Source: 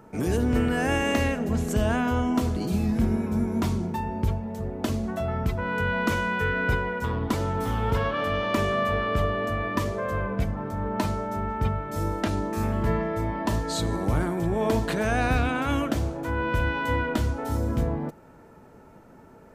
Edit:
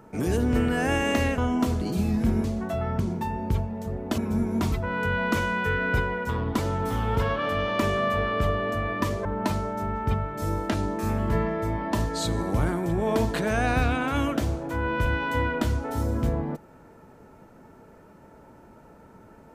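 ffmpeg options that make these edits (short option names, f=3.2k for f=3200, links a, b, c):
-filter_complex "[0:a]asplit=7[a][b][c][d][e][f][g];[a]atrim=end=1.382[h];[b]atrim=start=2.128:end=3.192[i];[c]atrim=start=4.908:end=5.472[j];[d]atrim=start=3.728:end=4.912[k];[e]atrim=start=3.188:end=3.732[l];[f]atrim=start=5.468:end=10.002[m];[g]atrim=start=10.788[n];[h][i]acrossfade=d=0.004:c1=hsin:c2=hsin[o];[o][j]acrossfade=d=0.004:c1=hsin:c2=hsin[p];[p][k]acrossfade=d=0.004:c1=hsin:c2=hsin[q];[q][l]acrossfade=d=0.004:c1=hsin:c2=hsin[r];[r][m]acrossfade=d=0.004:c1=hsin:c2=hsin[s];[s][n]acrossfade=d=0.004:c1=hsin:c2=hsin"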